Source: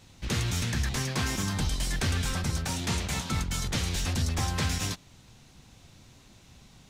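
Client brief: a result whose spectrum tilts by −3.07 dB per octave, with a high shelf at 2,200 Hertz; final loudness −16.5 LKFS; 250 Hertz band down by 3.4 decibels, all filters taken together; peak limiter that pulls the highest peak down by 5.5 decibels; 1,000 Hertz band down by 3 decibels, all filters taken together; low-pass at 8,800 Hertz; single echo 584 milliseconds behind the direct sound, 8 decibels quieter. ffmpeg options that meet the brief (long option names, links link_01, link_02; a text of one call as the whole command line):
ffmpeg -i in.wav -af "lowpass=8800,equalizer=frequency=250:width_type=o:gain=-5,equalizer=frequency=1000:width_type=o:gain=-4.5,highshelf=frequency=2200:gain=3.5,alimiter=limit=-22.5dB:level=0:latency=1,aecho=1:1:584:0.398,volume=15dB" out.wav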